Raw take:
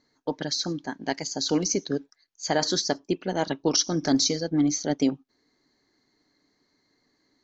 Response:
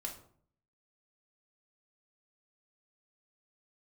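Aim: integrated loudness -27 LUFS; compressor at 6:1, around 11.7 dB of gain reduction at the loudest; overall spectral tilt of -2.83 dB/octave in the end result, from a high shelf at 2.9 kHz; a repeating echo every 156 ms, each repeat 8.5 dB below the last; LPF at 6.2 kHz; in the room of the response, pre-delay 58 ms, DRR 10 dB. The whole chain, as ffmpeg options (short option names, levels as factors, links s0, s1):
-filter_complex "[0:a]lowpass=6200,highshelf=f=2900:g=9,acompressor=threshold=0.0447:ratio=6,aecho=1:1:156|312|468|624:0.376|0.143|0.0543|0.0206,asplit=2[s0][s1];[1:a]atrim=start_sample=2205,adelay=58[s2];[s1][s2]afir=irnorm=-1:irlink=0,volume=0.355[s3];[s0][s3]amix=inputs=2:normalize=0,volume=1.41"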